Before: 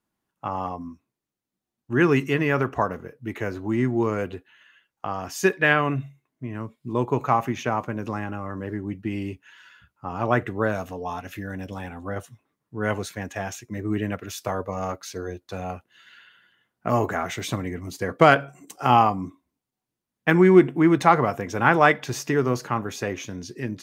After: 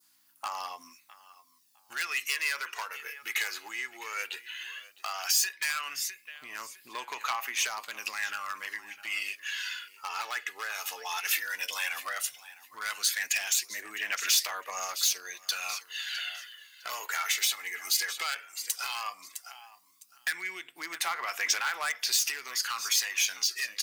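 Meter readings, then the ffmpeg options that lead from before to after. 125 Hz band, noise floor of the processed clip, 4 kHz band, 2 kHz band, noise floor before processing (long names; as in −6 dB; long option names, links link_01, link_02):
below −40 dB, −64 dBFS, +8.0 dB, −4.0 dB, below −85 dBFS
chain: -filter_complex "[0:a]acompressor=threshold=-33dB:ratio=10,aeval=exprs='val(0)+0.00141*(sin(2*PI*60*n/s)+sin(2*PI*2*60*n/s)/2+sin(2*PI*3*60*n/s)/3+sin(2*PI*4*60*n/s)/4+sin(2*PI*5*60*n/s)/5)':channel_layout=same,asplit=2[link_01][link_02];[link_02]aecho=0:1:657|1314:0.126|0.0277[link_03];[link_01][link_03]amix=inputs=2:normalize=0,adynamicequalizer=threshold=0.00178:dfrequency=2400:dqfactor=0.97:tfrequency=2400:tqfactor=0.97:attack=5:release=100:ratio=0.375:range=3.5:mode=boostabove:tftype=bell,volume=26.5dB,asoftclip=hard,volume=-26.5dB,highpass=1100,equalizer=frequency=4700:width=3.8:gain=6.5,asoftclip=type=tanh:threshold=-31.5dB,crystalizer=i=9.5:c=0,aphaser=in_gain=1:out_gain=1:delay=2.4:decay=0.43:speed=0.14:type=sinusoidal,alimiter=limit=-14dB:level=0:latency=1:release=353"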